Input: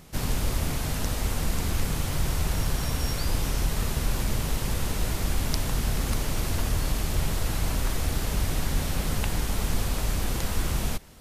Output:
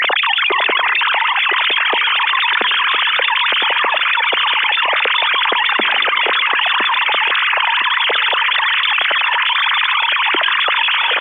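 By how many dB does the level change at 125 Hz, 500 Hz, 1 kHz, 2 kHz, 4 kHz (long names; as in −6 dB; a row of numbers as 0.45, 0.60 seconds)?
below −30 dB, +10.5 dB, +21.5 dB, +25.5 dB, +22.5 dB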